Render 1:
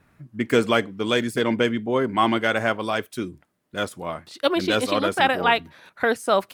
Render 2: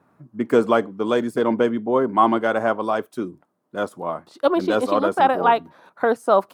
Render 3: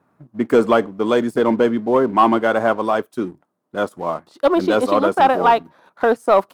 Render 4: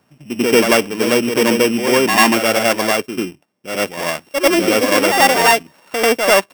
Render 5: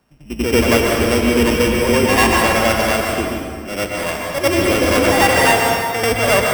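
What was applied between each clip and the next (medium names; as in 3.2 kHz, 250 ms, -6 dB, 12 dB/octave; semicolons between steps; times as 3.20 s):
high-pass 180 Hz 12 dB/octave; resonant high shelf 1.5 kHz -10 dB, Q 1.5; trim +2.5 dB
waveshaping leveller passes 1
sorted samples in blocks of 16 samples; reverse echo 92 ms -6.5 dB; trim +1.5 dB
octave divider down 2 oct, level -3 dB; plate-style reverb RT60 2 s, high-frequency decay 0.7×, pre-delay 110 ms, DRR -0.5 dB; trim -3.5 dB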